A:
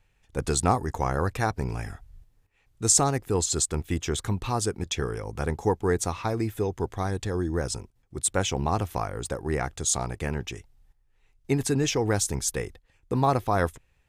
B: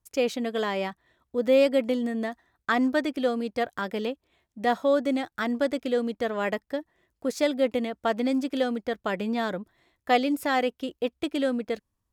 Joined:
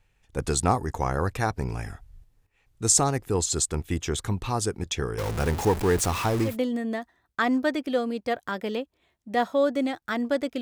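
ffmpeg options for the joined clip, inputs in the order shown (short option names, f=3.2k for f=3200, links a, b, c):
-filter_complex "[0:a]asettb=1/sr,asplit=3[a][b][c];[a]atrim=end=5.184[d];[b]atrim=start=5.18:end=6.57,asetpts=PTS-STARTPTS,afade=t=in:d=0.004:c=qsin,afade=t=out:st=1.386:d=0.004:c=qsin,aeval=exprs='val(0)+0.5*0.0473*sgn(val(0))':c=same[e];[c]atrim=start=6.566[f];[d][e]acrossfade=d=0.004:c1=hsin:c2=qsin[g];[g][f]acrossfade=d=0.004:c1=qsin:c2=hsin,apad=whole_dur=10.61,atrim=end=10.61,atrim=end=6.57,asetpts=PTS-STARTPTS[h];[1:a]atrim=start=1.73:end=5.91,asetpts=PTS-STARTPTS[i];[h][i]acrossfade=d=0.14:c1=tri:c2=tri"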